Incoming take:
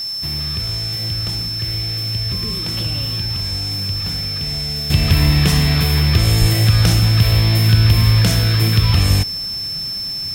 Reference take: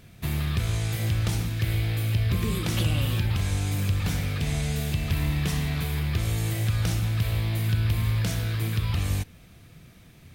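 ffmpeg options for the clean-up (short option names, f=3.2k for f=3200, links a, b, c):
-filter_complex "[0:a]bandreject=f=5.3k:w=30,asplit=3[a][b][c];[a]afade=t=out:st=6.4:d=0.02[d];[b]highpass=f=140:w=0.5412,highpass=f=140:w=1.3066,afade=t=in:st=6.4:d=0.02,afade=t=out:st=6.52:d=0.02[e];[c]afade=t=in:st=6.52:d=0.02[f];[d][e][f]amix=inputs=3:normalize=0,afwtdn=0.0089,asetnsamples=n=441:p=0,asendcmd='4.9 volume volume -12dB',volume=0dB"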